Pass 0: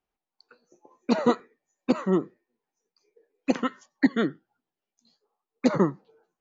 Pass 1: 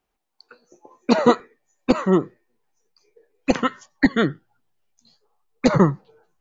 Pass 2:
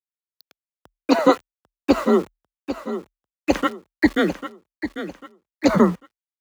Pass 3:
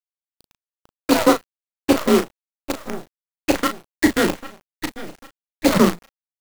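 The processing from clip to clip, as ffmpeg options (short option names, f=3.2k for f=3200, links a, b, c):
-af "asubboost=boost=10:cutoff=83,volume=8dB"
-af "aeval=exprs='val(0)*gte(abs(val(0)),0.02)':c=same,afreqshift=37,aecho=1:1:796|1592|2388|3184:0.282|0.0986|0.0345|0.0121"
-filter_complex "[0:a]acrusher=bits=4:dc=4:mix=0:aa=0.000001,asplit=2[a][b];[b]adelay=36,volume=-8dB[c];[a][c]amix=inputs=2:normalize=0"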